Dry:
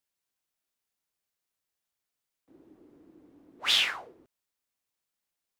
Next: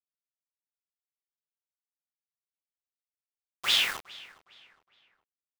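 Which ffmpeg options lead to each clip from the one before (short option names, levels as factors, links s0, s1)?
-filter_complex "[0:a]acrusher=bits=5:mix=0:aa=0.000001,asplit=2[s0][s1];[s1]adelay=412,lowpass=f=3800:p=1,volume=0.106,asplit=2[s2][s3];[s3]adelay=412,lowpass=f=3800:p=1,volume=0.39,asplit=2[s4][s5];[s5]adelay=412,lowpass=f=3800:p=1,volume=0.39[s6];[s0][s2][s4][s6]amix=inputs=4:normalize=0"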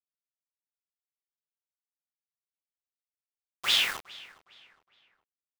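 -af anull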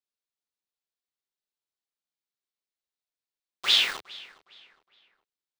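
-af "equalizer=f=100:t=o:w=0.67:g=-11,equalizer=f=400:t=o:w=0.67:g=4,equalizer=f=4000:t=o:w=0.67:g=6,equalizer=f=16000:t=o:w=0.67:g=-11"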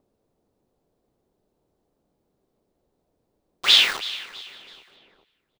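-filter_complex "[0:a]acrossover=split=660[s0][s1];[s0]acompressor=mode=upward:threshold=0.00178:ratio=2.5[s2];[s1]aecho=1:1:326|652|978:0.15|0.0554|0.0205[s3];[s2][s3]amix=inputs=2:normalize=0,volume=2"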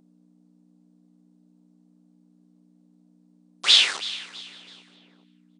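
-af "aeval=exprs='val(0)+0.00794*(sin(2*PI*60*n/s)+sin(2*PI*2*60*n/s)/2+sin(2*PI*3*60*n/s)/3+sin(2*PI*4*60*n/s)/4+sin(2*PI*5*60*n/s)/5)':c=same,bass=f=250:g=-7,treble=f=4000:g=7,afftfilt=real='re*between(b*sr/4096,130,9800)':imag='im*between(b*sr/4096,130,9800)':win_size=4096:overlap=0.75,volume=0.668"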